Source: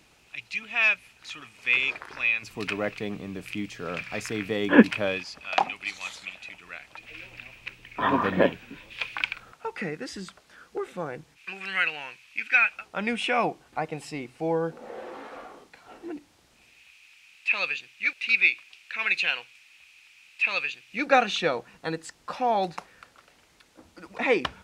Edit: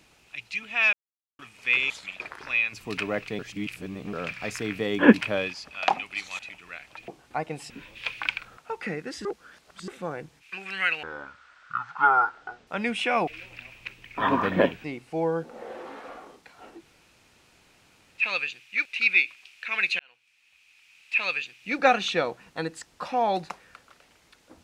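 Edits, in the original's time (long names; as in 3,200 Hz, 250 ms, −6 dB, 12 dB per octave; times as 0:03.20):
0:00.93–0:01.39: silence
0:03.09–0:03.83: reverse
0:06.09–0:06.39: move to 0:01.90
0:07.08–0:08.65: swap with 0:13.50–0:14.12
0:10.20–0:10.83: reverse
0:11.98–0:12.90: play speed 56%
0:16.06–0:17.48: fill with room tone, crossfade 0.06 s
0:19.27–0:20.47: fade in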